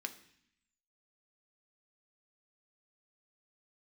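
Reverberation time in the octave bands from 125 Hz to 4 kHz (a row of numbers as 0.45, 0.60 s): 0.95, 0.95, 0.60, 0.65, 0.90, 0.85 s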